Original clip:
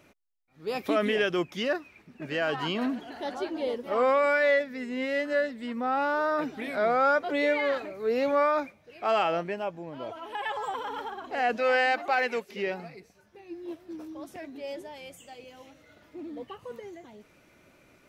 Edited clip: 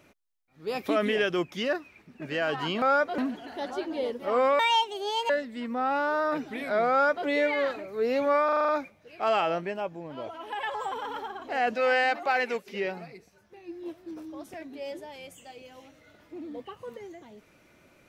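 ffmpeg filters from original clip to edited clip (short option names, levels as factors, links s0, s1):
-filter_complex "[0:a]asplit=11[s0][s1][s2][s3][s4][s5][s6][s7][s8][s9][s10];[s0]atrim=end=2.822[s11];[s1]atrim=start=6.968:end=7.332[s12];[s2]atrim=start=2.818:end=4.234[s13];[s3]atrim=start=4.23:end=5.36,asetpts=PTS-STARTPTS,asetrate=70560,aresample=44100[s14];[s4]atrim=start=5.356:end=8.552[s15];[s5]atrim=start=8.508:end=8.552[s16];[s6]atrim=start=8.508:end=8.552[s17];[s7]atrim=start=8.508:end=8.552[s18];[s8]atrim=start=8.508:end=8.552[s19];[s9]atrim=start=8.508:end=8.552[s20];[s10]atrim=start=8.508[s21];[s11][s12]acrossfade=d=0.004:c1=hsin:c2=hsin[s22];[s22][s13]acrossfade=d=0.004:c1=hsin:c2=hsin[s23];[s23][s14]acrossfade=d=0.004:c1=hsin:c2=hsin[s24];[s24][s15]acrossfade=d=0.004:c1=hsin:c2=hsin[s25];[s25][s16]acrossfade=d=0.004:c1=hsin:c2=hsin[s26];[s26][s17]acrossfade=d=0.004:c1=hsin:c2=hsin[s27];[s27][s18]acrossfade=d=0.004:c1=hsin:c2=hsin[s28];[s28][s19]acrossfade=d=0.004:c1=hsin:c2=hsin[s29];[s29][s20]acrossfade=d=0.004:c1=hsin:c2=hsin[s30];[s30][s21]acrossfade=d=0.004:c1=hsin:c2=hsin"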